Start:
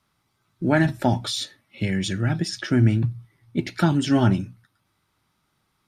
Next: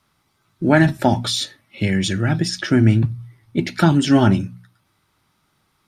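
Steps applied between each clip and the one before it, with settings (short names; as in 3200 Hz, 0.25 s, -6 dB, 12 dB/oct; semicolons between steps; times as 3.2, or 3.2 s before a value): notches 60/120/180/240 Hz; gain +5.5 dB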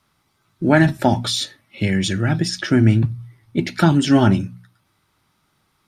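nothing audible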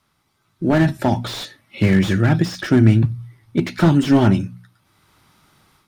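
AGC gain up to 10.5 dB; slew limiter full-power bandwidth 160 Hz; gain -1 dB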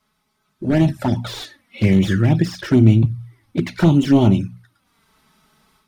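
envelope flanger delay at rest 4.7 ms, full sweep at -10.5 dBFS; gain +1 dB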